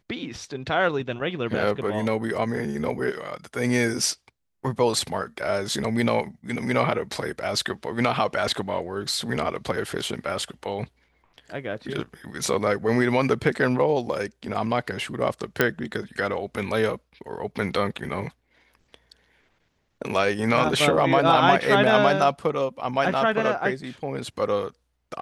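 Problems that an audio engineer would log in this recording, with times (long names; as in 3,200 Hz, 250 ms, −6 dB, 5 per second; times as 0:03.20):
0:15.61: click −5 dBFS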